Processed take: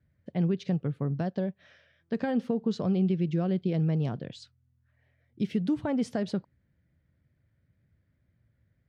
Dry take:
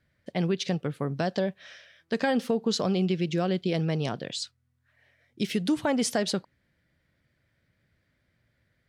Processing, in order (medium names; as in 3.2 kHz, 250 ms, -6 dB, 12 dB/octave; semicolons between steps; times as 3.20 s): high-pass 71 Hz; RIAA curve playback; wow and flutter 25 cents; 1.19–1.59 s: upward expansion 1.5:1, over -31 dBFS; trim -7.5 dB